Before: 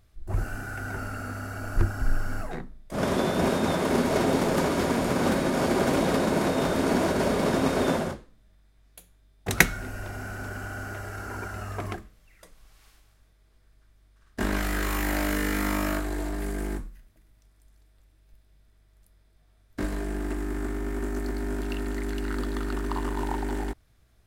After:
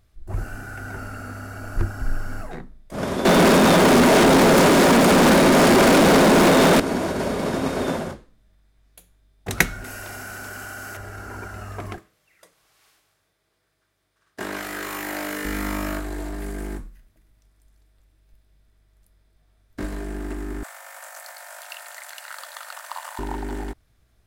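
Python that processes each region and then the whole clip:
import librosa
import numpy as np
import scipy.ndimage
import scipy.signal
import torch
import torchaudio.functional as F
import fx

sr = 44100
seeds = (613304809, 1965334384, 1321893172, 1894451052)

y = fx.chain(x, sr, fx.steep_highpass(hz=150.0, slope=72),
    fx.leveller(passes=5), at=(3.25, 6.8))
y = fx.chain(y, sr, fx.tilt_eq(slope=2.5),
    fx.env_flatten(amount_pct=100), at=(9.84, 10.97))
y = fx.chain(y, sr, fx.highpass(hz=180.0, slope=12),
    fx.peak_eq(hz=230.0, db=-11.5, octaves=0.39), at=(11.98, 15.45))
y = fx.chain(y, sr, fx.brickwall_highpass(low_hz=520.0),
    fx.high_shelf(hz=4800.0, db=9.5), at=(20.63, 23.19))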